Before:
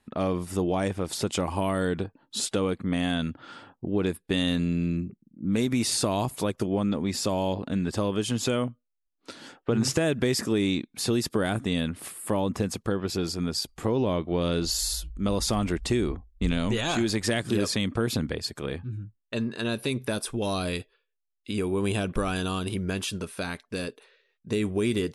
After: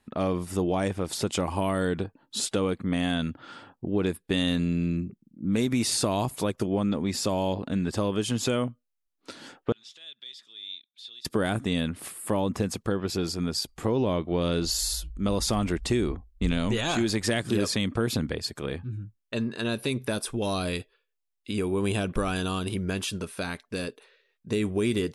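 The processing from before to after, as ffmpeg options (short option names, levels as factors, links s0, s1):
-filter_complex "[0:a]asettb=1/sr,asplit=3[s0][s1][s2];[s0]atrim=end=9.724[s3];[s1]atrim=start=9.72:end=11.25,asetpts=PTS-STARTPTS,afade=t=in:d=0.004:c=qsin,afade=t=out:st=1.526:d=0.004:c=qsin,bandpass=f=3500:t=q:w=12[s4];[s2]atrim=start=11.246[s5];[s3][s4]acrossfade=d=0.004:c1=hsin:c2=qsin[s6];[s6][s5]acrossfade=d=0.004:c1=qsin:c2=hsin"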